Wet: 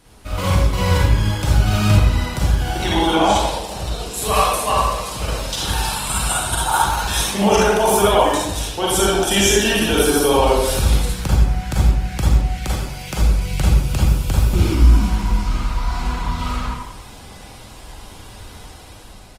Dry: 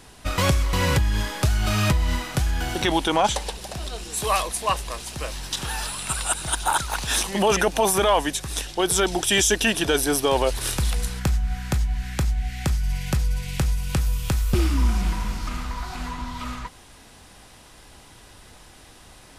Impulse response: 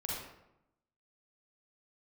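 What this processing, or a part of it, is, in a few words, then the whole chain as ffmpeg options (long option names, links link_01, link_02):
speakerphone in a meeting room: -filter_complex "[0:a]asplit=3[link_01][link_02][link_03];[link_01]afade=type=out:start_time=12.64:duration=0.02[link_04];[link_02]highpass=frequency=300:poles=1,afade=type=in:start_time=12.64:duration=0.02,afade=type=out:start_time=13.16:duration=0.02[link_05];[link_03]afade=type=in:start_time=13.16:duration=0.02[link_06];[link_04][link_05][link_06]amix=inputs=3:normalize=0,equalizer=frequency=1800:width=4.8:gain=-4,aecho=1:1:86|172|258:0.335|0.0636|0.0121[link_07];[1:a]atrim=start_sample=2205[link_08];[link_07][link_08]afir=irnorm=-1:irlink=0,dynaudnorm=framelen=240:gausssize=7:maxgain=7dB,volume=-1dB" -ar 48000 -c:a libopus -b:a 20k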